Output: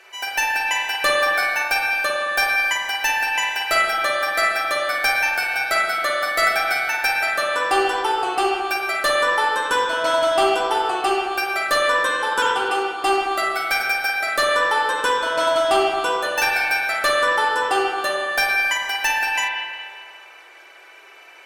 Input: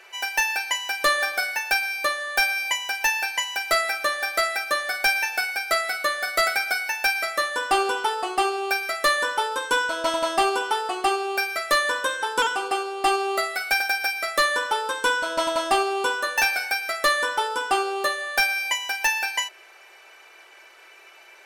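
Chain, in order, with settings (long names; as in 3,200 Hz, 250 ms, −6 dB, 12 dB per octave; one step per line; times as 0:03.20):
spring reverb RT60 1.9 s, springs 44/54 ms, chirp 60 ms, DRR −2 dB
harmonic generator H 6 −35 dB, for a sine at −5.5 dBFS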